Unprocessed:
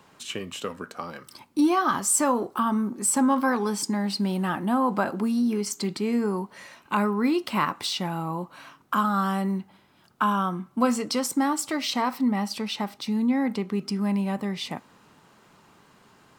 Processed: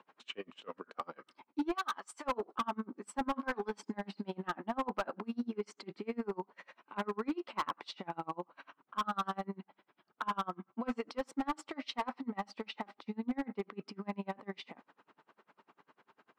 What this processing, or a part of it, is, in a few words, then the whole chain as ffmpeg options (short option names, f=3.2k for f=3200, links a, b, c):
helicopter radio: -filter_complex "[0:a]highpass=310,lowpass=2.5k,aeval=exprs='val(0)*pow(10,-32*(0.5-0.5*cos(2*PI*10*n/s))/20)':c=same,asoftclip=type=hard:threshold=-26dB,asplit=3[a][b][c];[a]afade=t=out:st=1.74:d=0.02[d];[b]highpass=f=1.1k:p=1,afade=t=in:st=1.74:d=0.02,afade=t=out:st=2.24:d=0.02[e];[c]afade=t=in:st=2.24:d=0.02[f];[d][e][f]amix=inputs=3:normalize=0,volume=-1.5dB"